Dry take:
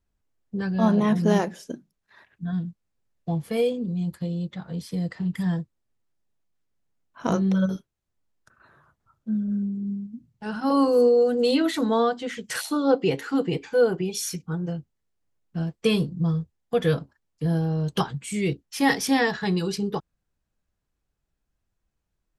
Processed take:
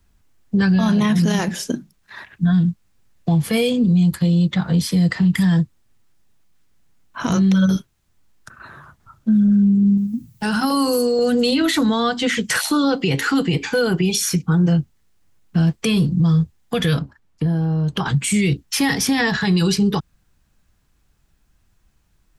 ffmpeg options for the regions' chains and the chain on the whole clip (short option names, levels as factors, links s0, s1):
-filter_complex "[0:a]asettb=1/sr,asplit=3[s0][s1][s2];[s0]atrim=end=9.974[s3];[s1]atrim=start=9.97:end=11.19,asetpts=PTS-STARTPTS,afade=t=in:d=0.004:c=qsin,afade=t=out:st=1.216:d=0.004:c=qsin,aemphasis=mode=production:type=50fm,acompressor=threshold=0.0141:ratio=1.5:attack=3.2:release=140:knee=1:detection=peak[s4];[s2]atrim=start=11.186[s5];[s3][s4]acrossfade=d=0.004:c1=hsin:c2=qsin[s6];[s6][s5]acrossfade=d=0.004:c1=qsin:c2=hsin,asettb=1/sr,asplit=3[s7][s8][s9];[s7]atrim=end=16.994[s10];[s8]atrim=start=16.99:end=18.06,asetpts=PTS-STARTPTS,afade=t=in:d=0.004:c=qsin,afade=t=out:st=1.066:d=0.004:c=qsin,highshelf=f=3200:g=-10.5,acompressor=threshold=0.0224:ratio=6:attack=3.2:release=140:knee=1:detection=peak[s11];[s9]atrim=start=18.056[s12];[s10][s11]acrossfade=d=0.004:c1=hsin:c2=qsin[s13];[s13][s12]acrossfade=d=0.004:c1=qsin:c2=hsin,equalizer=f=510:w=1.1:g=-6,acrossover=split=170|1800[s14][s15][s16];[s14]acompressor=threshold=0.0251:ratio=4[s17];[s15]acompressor=threshold=0.02:ratio=4[s18];[s16]acompressor=threshold=0.0126:ratio=4[s19];[s17][s18][s19]amix=inputs=3:normalize=0,alimiter=level_in=21.1:limit=0.891:release=50:level=0:latency=1,volume=0.355"